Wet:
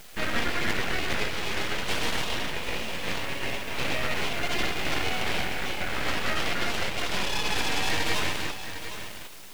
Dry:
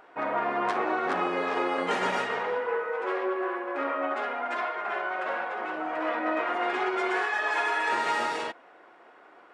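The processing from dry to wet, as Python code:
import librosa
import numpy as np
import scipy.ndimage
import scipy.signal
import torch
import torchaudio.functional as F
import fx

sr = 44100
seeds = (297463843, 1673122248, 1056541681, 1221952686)

p1 = fx.tracing_dist(x, sr, depth_ms=0.28)
p2 = fx.quant_dither(p1, sr, seeds[0], bits=6, dither='triangular')
p3 = p1 + (p2 * librosa.db_to_amplitude(-8.0))
p4 = fx.high_shelf(p3, sr, hz=5900.0, db=-8.5)
p5 = p4 + fx.echo_single(p4, sr, ms=756, db=-12.5, dry=0)
p6 = fx.rider(p5, sr, range_db=3, speed_s=2.0)
p7 = scipy.signal.sosfilt(scipy.signal.butter(12, 600.0, 'highpass', fs=sr, output='sos'), p6)
p8 = fx.peak_eq(p7, sr, hz=1900.0, db=3.0, octaves=0.77)
p9 = np.abs(p8)
y = p9 * librosa.db_to_amplitude(1.0)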